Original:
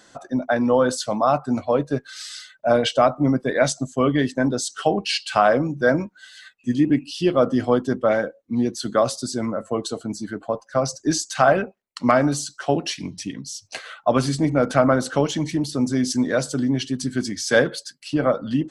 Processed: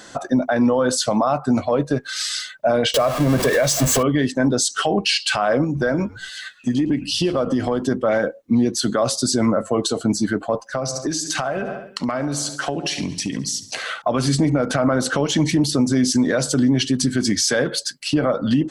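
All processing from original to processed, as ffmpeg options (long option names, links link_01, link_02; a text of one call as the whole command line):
ffmpeg -i in.wav -filter_complex "[0:a]asettb=1/sr,asplit=3[link_01][link_02][link_03];[link_01]atrim=end=2.944[link_04];[link_02]atrim=start=2.94:end=4.03,asetpts=PTS-STARTPTS,afade=type=in:duration=0.004:curve=qsin,afade=type=out:start_time=1.086:duration=0.004:curve=qsin,aeval=exprs='val(0)+0.5*0.0668*sgn(val(0))':channel_layout=same,aecho=1:1:1.8:0.43,atrim=end_sample=48069[link_05];[link_03]atrim=start=4.026[link_06];[link_04][link_05]acrossfade=duration=0.004:curve1=hsin:curve2=qsin[link_07];[link_07][link_06]acrossfade=duration=0.004:curve1=qsin:curve2=hsin,asettb=1/sr,asplit=3[link_08][link_09][link_10];[link_08]atrim=end=5.644[link_11];[link_09]atrim=start=5.64:end=7.83,asetpts=PTS-STARTPTS,afade=type=in:duration=0.004:curve=qsin,afade=type=out:start_time=2.186:duration=0.004:curve=qsin,acompressor=threshold=-26dB:ratio=8:attack=3.2:release=140:knee=1:detection=peak,asplit=3[link_12][link_13][link_14];[link_13]adelay=110,afreqshift=-93,volume=-21dB[link_15];[link_14]adelay=220,afreqshift=-186,volume=-31.2dB[link_16];[link_12][link_15][link_16]amix=inputs=3:normalize=0,atrim=end_sample=96579[link_17];[link_10]atrim=start=7.826[link_18];[link_11][link_17]acrossfade=duration=0.004:curve1=hsin:curve2=qsin[link_19];[link_19][link_18]acrossfade=duration=0.004:curve1=qsin:curve2=hsin,asettb=1/sr,asplit=3[link_20][link_21][link_22];[link_20]atrim=end=10.624[link_23];[link_21]atrim=start=10.62:end=14.02,asetpts=PTS-STARTPTS,afade=type=in:duration=0.004:curve=qsin,afade=type=out:start_time=3.396:duration=0.004:curve=qsin,aecho=1:1:69|138|207|276|345:0.133|0.0747|0.0418|0.0234|0.0131,atrim=end_sample=149940,acompressor=threshold=-30dB:ratio=10:attack=3.2:release=140:knee=1:detection=peak[link_24];[link_22]atrim=start=14.016[link_25];[link_23][link_24]acrossfade=duration=0.004:curve1=hsin:curve2=qsin[link_26];[link_26][link_25]acrossfade=duration=0.004:curve1=qsin:curve2=hsin,acompressor=threshold=-22dB:ratio=6,alimiter=level_in=19dB:limit=-1dB:release=50:level=0:latency=1,volume=-8.5dB" out.wav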